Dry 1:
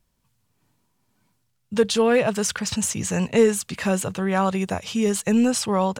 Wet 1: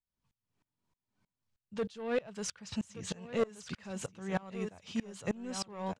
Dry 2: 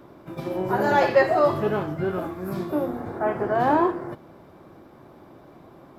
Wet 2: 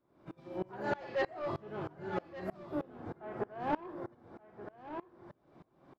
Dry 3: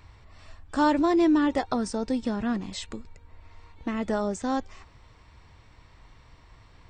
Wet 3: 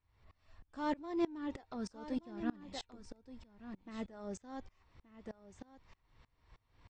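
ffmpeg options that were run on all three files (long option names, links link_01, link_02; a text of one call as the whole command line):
ffmpeg -i in.wav -af "asoftclip=type=tanh:threshold=-15.5dB,lowpass=6300,aecho=1:1:1176:0.355,aeval=exprs='val(0)*pow(10,-26*if(lt(mod(-3.2*n/s,1),2*abs(-3.2)/1000),1-mod(-3.2*n/s,1)/(2*abs(-3.2)/1000),(mod(-3.2*n/s,1)-2*abs(-3.2)/1000)/(1-2*abs(-3.2)/1000))/20)':channel_layout=same,volume=-6.5dB" out.wav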